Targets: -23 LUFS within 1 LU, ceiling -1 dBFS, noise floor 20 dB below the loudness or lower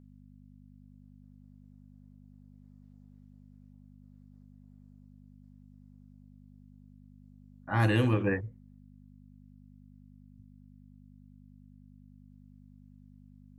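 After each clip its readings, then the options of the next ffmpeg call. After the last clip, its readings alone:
hum 50 Hz; highest harmonic 250 Hz; hum level -53 dBFS; loudness -28.5 LUFS; peak level -14.5 dBFS; loudness target -23.0 LUFS
-> -af "bandreject=f=50:t=h:w=4,bandreject=f=100:t=h:w=4,bandreject=f=150:t=h:w=4,bandreject=f=200:t=h:w=4,bandreject=f=250:t=h:w=4"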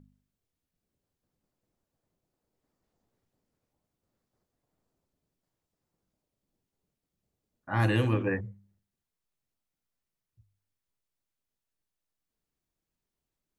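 hum not found; loudness -28.5 LUFS; peak level -14.5 dBFS; loudness target -23.0 LUFS
-> -af "volume=1.88"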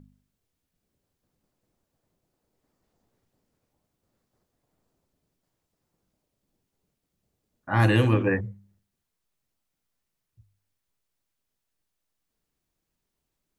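loudness -23.0 LUFS; peak level -9.0 dBFS; noise floor -82 dBFS

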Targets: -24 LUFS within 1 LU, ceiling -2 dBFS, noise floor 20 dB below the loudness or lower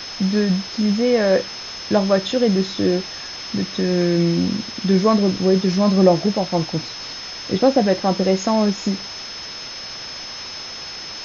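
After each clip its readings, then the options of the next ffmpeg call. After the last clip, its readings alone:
steady tone 5.2 kHz; tone level -32 dBFS; noise floor -33 dBFS; noise floor target -40 dBFS; loudness -20.0 LUFS; peak level -2.0 dBFS; loudness target -24.0 LUFS
-> -af "bandreject=f=5200:w=30"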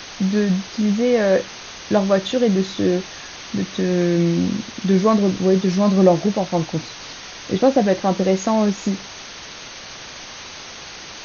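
steady tone not found; noise floor -37 dBFS; noise floor target -39 dBFS
-> -af "afftdn=nr=6:nf=-37"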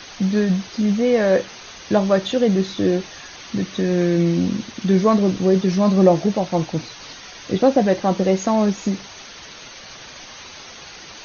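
noise floor -40 dBFS; loudness -19.0 LUFS; peak level -2.0 dBFS; loudness target -24.0 LUFS
-> -af "volume=0.562"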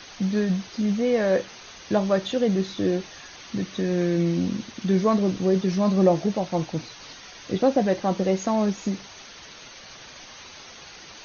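loudness -24.0 LUFS; peak level -7.0 dBFS; noise floor -45 dBFS

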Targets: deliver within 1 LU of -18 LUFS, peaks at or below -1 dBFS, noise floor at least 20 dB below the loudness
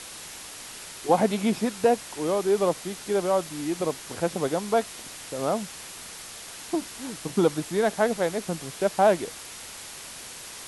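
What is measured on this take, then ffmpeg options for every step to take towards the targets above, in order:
noise floor -41 dBFS; noise floor target -47 dBFS; loudness -26.5 LUFS; peak level -7.0 dBFS; loudness target -18.0 LUFS
-> -af "afftdn=nr=6:nf=-41"
-af "volume=2.66,alimiter=limit=0.891:level=0:latency=1"

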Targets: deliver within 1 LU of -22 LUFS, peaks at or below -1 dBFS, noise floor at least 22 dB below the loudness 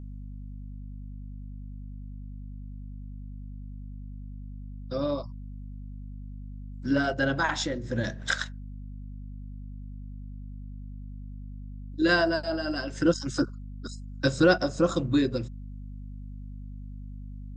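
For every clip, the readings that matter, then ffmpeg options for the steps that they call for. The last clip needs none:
hum 50 Hz; highest harmonic 250 Hz; hum level -37 dBFS; loudness -27.5 LUFS; peak level -9.0 dBFS; loudness target -22.0 LUFS
-> -af "bandreject=f=50:t=h:w=6,bandreject=f=100:t=h:w=6,bandreject=f=150:t=h:w=6,bandreject=f=200:t=h:w=6,bandreject=f=250:t=h:w=6"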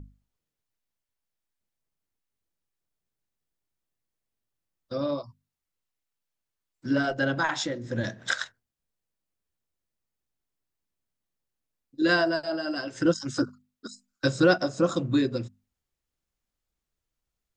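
hum not found; loudness -27.0 LUFS; peak level -8.0 dBFS; loudness target -22.0 LUFS
-> -af "volume=1.78"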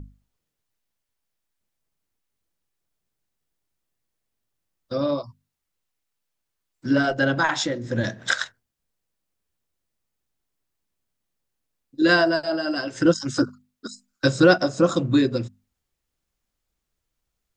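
loudness -22.0 LUFS; peak level -3.0 dBFS; noise floor -81 dBFS

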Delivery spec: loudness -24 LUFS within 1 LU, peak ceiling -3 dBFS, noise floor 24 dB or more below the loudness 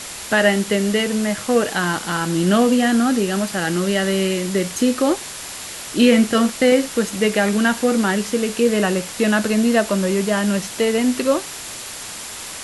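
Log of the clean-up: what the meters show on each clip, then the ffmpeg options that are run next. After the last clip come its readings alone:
steady tone 7.3 kHz; tone level -42 dBFS; noise floor -33 dBFS; noise floor target -43 dBFS; loudness -18.5 LUFS; peak level -3.0 dBFS; loudness target -24.0 LUFS
-> -af "bandreject=f=7300:w=30"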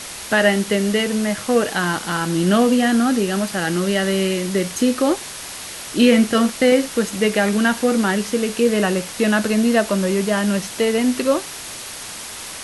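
steady tone not found; noise floor -33 dBFS; noise floor target -43 dBFS
-> -af "afftdn=nr=10:nf=-33"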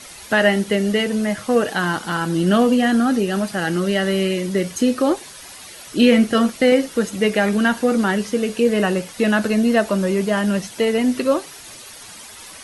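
noise floor -39 dBFS; noise floor target -43 dBFS
-> -af "afftdn=nr=6:nf=-39"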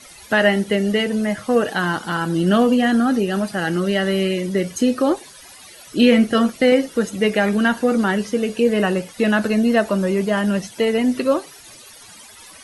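noise floor -43 dBFS; loudness -19.0 LUFS; peak level -3.0 dBFS; loudness target -24.0 LUFS
-> -af "volume=0.562"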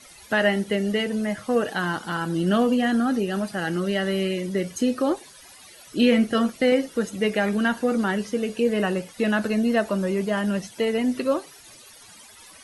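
loudness -24.0 LUFS; peak level -8.0 dBFS; noise floor -48 dBFS

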